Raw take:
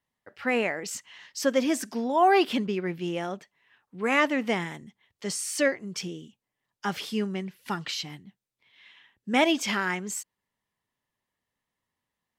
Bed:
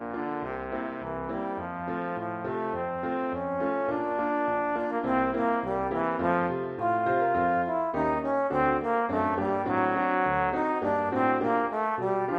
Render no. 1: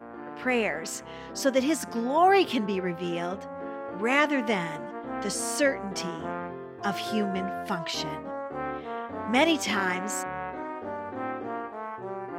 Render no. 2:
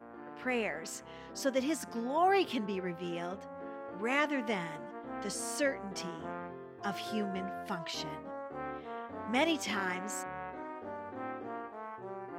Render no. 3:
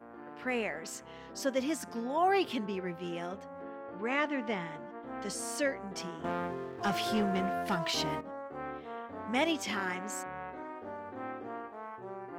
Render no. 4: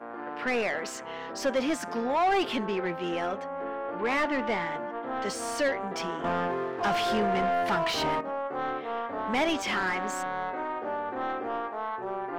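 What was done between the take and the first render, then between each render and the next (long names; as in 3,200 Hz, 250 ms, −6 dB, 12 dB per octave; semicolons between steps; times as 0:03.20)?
mix in bed −8.5 dB
level −7.5 dB
0:03.62–0:05.03: high-frequency loss of the air 96 metres; 0:06.24–0:08.21: leveller curve on the samples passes 2
mid-hump overdrive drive 21 dB, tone 1,900 Hz, clips at −17.5 dBFS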